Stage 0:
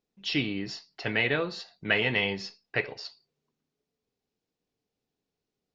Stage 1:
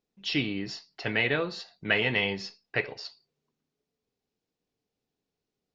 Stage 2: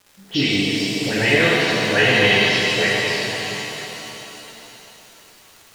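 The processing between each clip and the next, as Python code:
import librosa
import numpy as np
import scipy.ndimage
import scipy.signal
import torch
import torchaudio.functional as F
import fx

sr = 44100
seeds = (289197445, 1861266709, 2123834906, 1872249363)

y1 = x
y2 = fx.dispersion(y1, sr, late='highs', ms=91.0, hz=1200.0)
y2 = fx.dmg_crackle(y2, sr, seeds[0], per_s=180.0, level_db=-41.0)
y2 = fx.rev_shimmer(y2, sr, seeds[1], rt60_s=3.7, semitones=7, shimmer_db=-8, drr_db=-6.0)
y2 = y2 * librosa.db_to_amplitude(5.0)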